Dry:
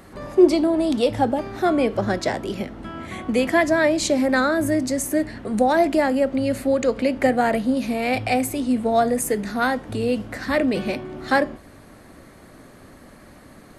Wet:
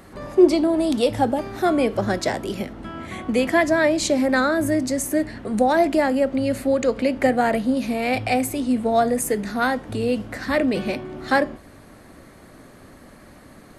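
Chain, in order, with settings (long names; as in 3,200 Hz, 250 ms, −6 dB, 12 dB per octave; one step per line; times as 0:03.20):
0:00.69–0:02.73: high-shelf EQ 9,000 Hz +8.5 dB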